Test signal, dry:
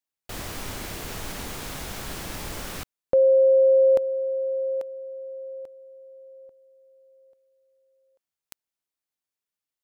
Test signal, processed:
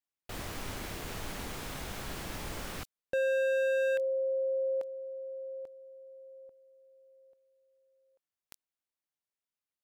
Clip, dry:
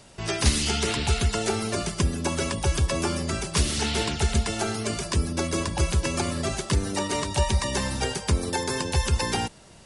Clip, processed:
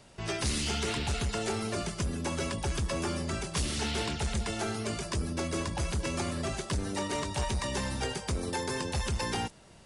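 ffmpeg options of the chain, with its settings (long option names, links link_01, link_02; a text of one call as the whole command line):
ffmpeg -i in.wav -filter_complex "[0:a]acrossover=split=4000[link_01][link_02];[link_01]volume=23dB,asoftclip=hard,volume=-23dB[link_03];[link_02]flanger=delay=18.5:depth=7.2:speed=0.37[link_04];[link_03][link_04]amix=inputs=2:normalize=0,volume=-4.5dB" out.wav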